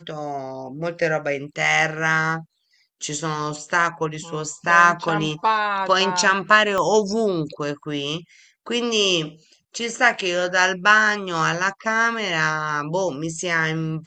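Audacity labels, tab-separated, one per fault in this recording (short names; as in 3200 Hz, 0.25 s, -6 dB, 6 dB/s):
6.780000	6.780000	pop -11 dBFS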